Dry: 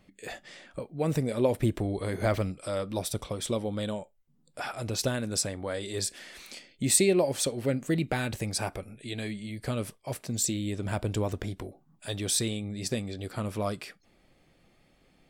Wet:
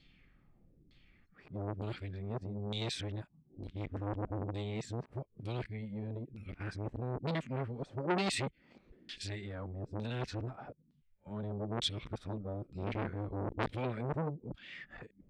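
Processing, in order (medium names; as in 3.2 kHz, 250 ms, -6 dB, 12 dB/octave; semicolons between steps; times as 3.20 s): reverse the whole clip; amplifier tone stack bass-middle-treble 6-0-2; LFO low-pass saw down 1.1 Hz 290–4200 Hz; transformer saturation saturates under 1.5 kHz; trim +15 dB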